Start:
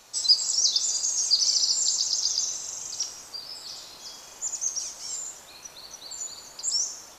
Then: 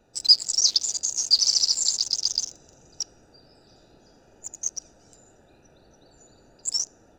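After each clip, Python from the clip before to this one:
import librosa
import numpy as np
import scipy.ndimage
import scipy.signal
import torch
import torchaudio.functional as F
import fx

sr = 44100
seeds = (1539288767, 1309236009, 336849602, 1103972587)

y = fx.wiener(x, sr, points=41)
y = fx.peak_eq(y, sr, hz=570.0, db=-2.5, octaves=0.77)
y = y * 10.0 ** (4.0 / 20.0)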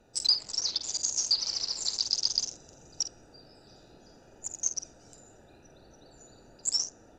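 y = fx.doubler(x, sr, ms=49.0, db=-11.0)
y = fx.env_lowpass_down(y, sr, base_hz=2800.0, full_db=-17.5)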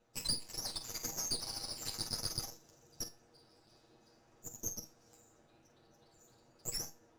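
y = fx.lower_of_two(x, sr, delay_ms=8.6)
y = fx.comb_fb(y, sr, f0_hz=160.0, decay_s=0.25, harmonics='all', damping=0.0, mix_pct=70)
y = y * 10.0 ** (-1.5 / 20.0)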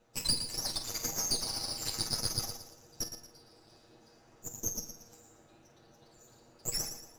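y = fx.echo_feedback(x, sr, ms=115, feedback_pct=35, wet_db=-9)
y = y * 10.0 ** (5.0 / 20.0)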